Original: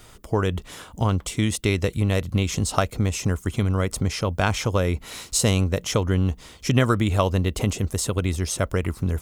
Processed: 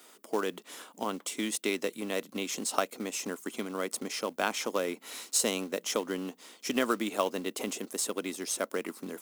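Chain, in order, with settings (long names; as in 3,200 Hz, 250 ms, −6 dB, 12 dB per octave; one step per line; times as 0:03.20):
Butterworth high-pass 230 Hz 36 dB per octave
high-shelf EQ 10,000 Hz +7 dB
floating-point word with a short mantissa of 2 bits
level −6.5 dB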